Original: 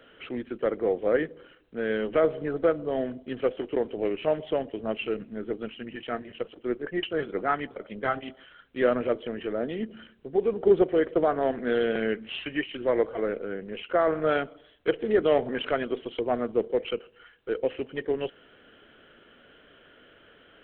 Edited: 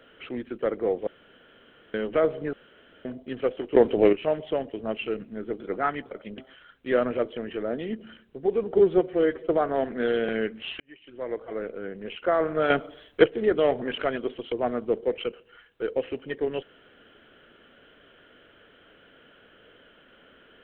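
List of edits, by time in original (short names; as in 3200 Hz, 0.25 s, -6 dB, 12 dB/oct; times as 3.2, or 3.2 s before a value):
1.07–1.94 room tone
2.53–3.05 room tone
3.75–4.13 gain +9.5 dB
5.6–7.25 cut
8.03–8.28 cut
10.69–11.15 stretch 1.5×
12.47–13.73 fade in
14.37–14.93 gain +7.5 dB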